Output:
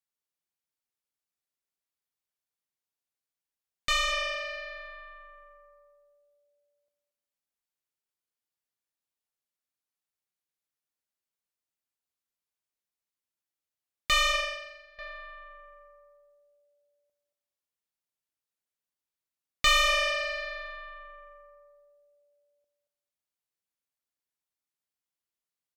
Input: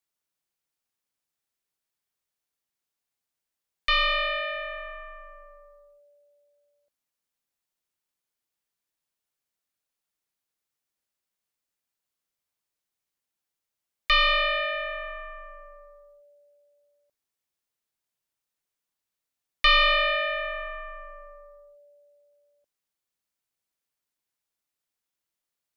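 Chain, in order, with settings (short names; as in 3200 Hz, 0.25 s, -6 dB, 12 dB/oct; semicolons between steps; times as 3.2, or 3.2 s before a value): feedback echo 0.229 s, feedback 19%, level -10.5 dB; added harmonics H 2 -8 dB, 3 -24 dB, 6 -23 dB, 7 -34 dB, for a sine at -13 dBFS; 14.32–14.99 upward expander 2.5:1, over -34 dBFS; gain -3.5 dB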